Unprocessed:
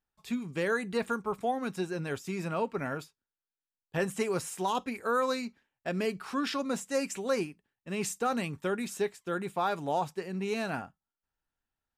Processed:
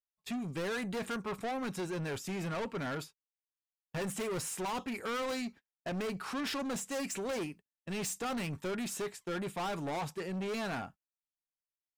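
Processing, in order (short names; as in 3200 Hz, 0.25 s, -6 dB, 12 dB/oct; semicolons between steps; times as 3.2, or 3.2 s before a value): gate -50 dBFS, range -29 dB; soft clip -37 dBFS, distortion -6 dB; gain +3.5 dB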